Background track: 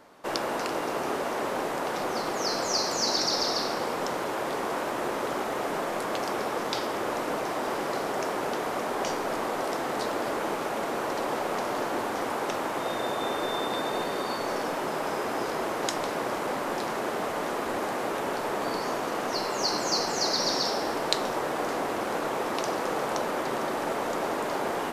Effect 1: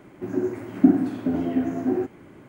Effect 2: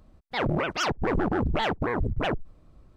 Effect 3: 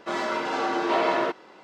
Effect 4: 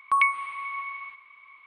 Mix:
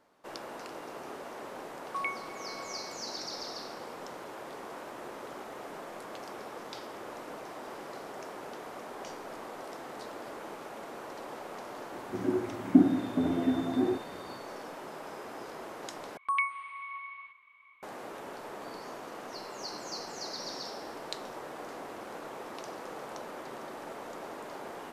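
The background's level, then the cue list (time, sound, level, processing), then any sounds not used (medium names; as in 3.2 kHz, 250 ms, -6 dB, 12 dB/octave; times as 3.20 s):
background track -13 dB
1.83 s: add 4 -13.5 dB
11.91 s: add 1 -4.5 dB + low-pass that closes with the level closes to 2.5 kHz, closed at -14.5 dBFS
16.17 s: replace with 4 -8 dB
not used: 2, 3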